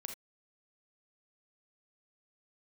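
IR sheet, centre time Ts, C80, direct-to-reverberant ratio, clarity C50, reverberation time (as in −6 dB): 16 ms, 15.0 dB, 4.5 dB, 7.0 dB, non-exponential decay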